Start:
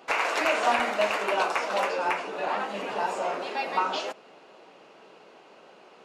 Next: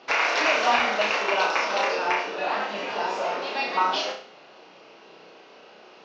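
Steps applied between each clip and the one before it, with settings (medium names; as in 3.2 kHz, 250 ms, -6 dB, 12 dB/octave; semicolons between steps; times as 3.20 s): FFT filter 940 Hz 0 dB, 5.9 kHz +6 dB, 9.3 kHz -30 dB; on a send: flutter echo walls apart 5.6 m, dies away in 0.45 s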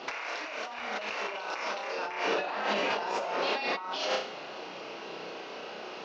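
compressor with a negative ratio -34 dBFS, ratio -1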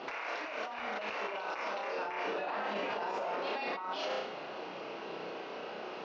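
low-pass 2.2 kHz 6 dB/octave; peak limiter -27.5 dBFS, peak gain reduction 9 dB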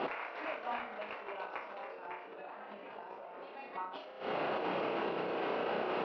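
compressor with a negative ratio -43 dBFS, ratio -0.5; distance through air 290 m; trim +5 dB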